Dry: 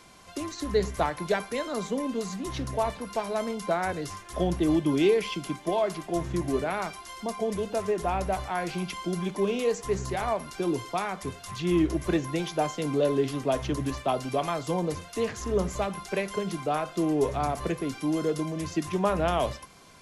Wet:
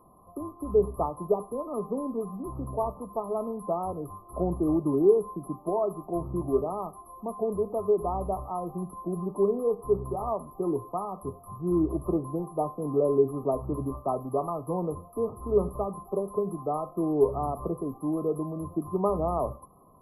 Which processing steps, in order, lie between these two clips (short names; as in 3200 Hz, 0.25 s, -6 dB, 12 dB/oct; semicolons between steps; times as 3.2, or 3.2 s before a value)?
dynamic EQ 410 Hz, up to +7 dB, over -41 dBFS, Q 7.6; brick-wall FIR band-stop 1300–11000 Hz; gain -2 dB